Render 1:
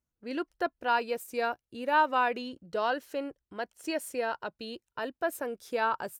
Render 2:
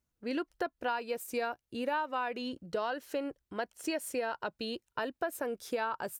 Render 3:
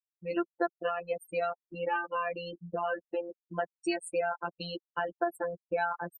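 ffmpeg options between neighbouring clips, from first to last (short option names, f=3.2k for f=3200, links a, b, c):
-af "acompressor=threshold=-34dB:ratio=6,volume=3.5dB"
-af "anlmdn=0.0631,afftfilt=real='re*gte(hypot(re,im),0.0178)':imag='im*gte(hypot(re,im),0.0178)':win_size=1024:overlap=0.75,afftfilt=real='hypot(re,im)*cos(PI*b)':imag='0':win_size=1024:overlap=0.75,volume=6dB"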